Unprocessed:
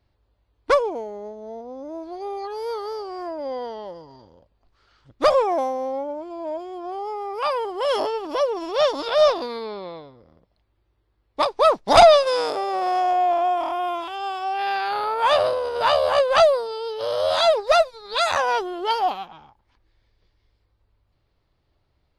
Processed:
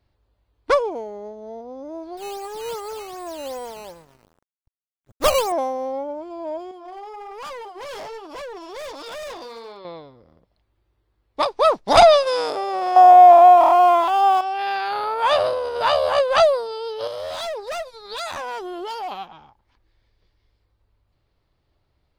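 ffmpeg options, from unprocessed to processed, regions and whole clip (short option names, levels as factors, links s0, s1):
-filter_complex "[0:a]asettb=1/sr,asplit=3[s0][s1][s2];[s0]atrim=end=2.174[s3];[s1]atrim=start=2.17:end=5.52,asetpts=PTS-STARTPTS,afade=t=in:d=0.004:c=qsin,afade=t=out:st=3.346:d=0.004:c=qsin,asubboost=boost=4.5:cutoff=130,acrusher=samples=9:mix=1:aa=0.000001:lfo=1:lforange=9:lforate=2.6,aeval=exprs='sgn(val(0))*max(abs(val(0))-0.00531,0)':c=same[s4];[s2]atrim=start=5.516[s5];[s3][s4]acrossfade=d=0.004:c1=hsin:c2=qsin[s6];[s6][s5]acrossfade=d=0.004:c1=qsin:c2=hsin,asettb=1/sr,asplit=3[s7][s8][s9];[s7]atrim=end=6.714[s10];[s8]atrim=start=6.71:end=9.85,asetpts=PTS-STARTPTS,afade=t=in:d=0.004:c=qsin,afade=t=out:st=3.136:d=0.004:c=qsin,equalizer=f=120:w=0.56:g=-12.5,flanger=delay=5.8:depth=5.4:regen=-50:speed=1.3:shape=sinusoidal,volume=39.8,asoftclip=hard,volume=0.0251[s11];[s9]atrim=start=9.846[s12];[s10][s11]acrossfade=d=0.004:c1=hsin:c2=qsin[s13];[s13][s12]acrossfade=d=0.004:c1=qsin:c2=hsin,asettb=1/sr,asplit=3[s14][s15][s16];[s14]atrim=end=12.964[s17];[s15]atrim=start=12.96:end=14.41,asetpts=PTS-STARTPTS,afade=t=in:d=0.004:c=qsin,afade=t=out:st=1.446:d=0.004:c=qsin,aeval=exprs='val(0)+0.5*0.0188*sgn(val(0))':c=same,equalizer=f=820:t=o:w=1.7:g=12[s18];[s16]atrim=start=14.406[s19];[s17][s18]acrossfade=d=0.004:c1=hsin:c2=qsin[s20];[s20][s19]acrossfade=d=0.004:c1=qsin:c2=hsin,asettb=1/sr,asplit=3[s21][s22][s23];[s21]atrim=end=17.074[s24];[s22]atrim=start=17.07:end=19.12,asetpts=PTS-STARTPTS,afade=t=in:d=0.004:c=qsin,afade=t=out:st=2.046:d=0.004:c=qsin,highshelf=f=8700:g=6.5,asoftclip=type=hard:threshold=0.126,acompressor=threshold=0.0398:ratio=5:attack=3.2:release=140:knee=1:detection=peak[s25];[s23]atrim=start=19.116[s26];[s24][s25]acrossfade=d=0.004:c1=hsin:c2=qsin[s27];[s27][s26]acrossfade=d=0.004:c1=qsin:c2=hsin"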